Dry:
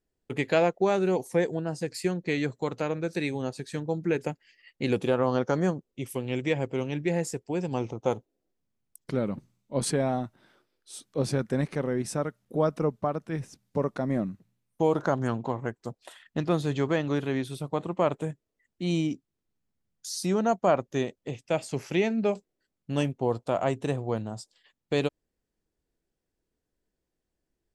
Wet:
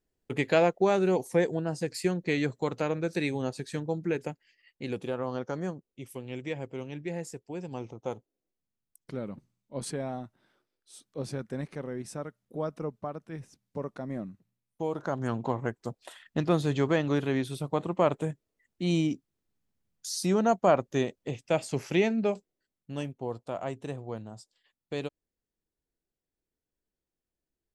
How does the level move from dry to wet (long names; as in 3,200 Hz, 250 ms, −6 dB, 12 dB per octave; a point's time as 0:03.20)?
0:03.67 0 dB
0:04.83 −8 dB
0:14.98 −8 dB
0:15.45 +0.5 dB
0:22.03 +0.5 dB
0:22.97 −8 dB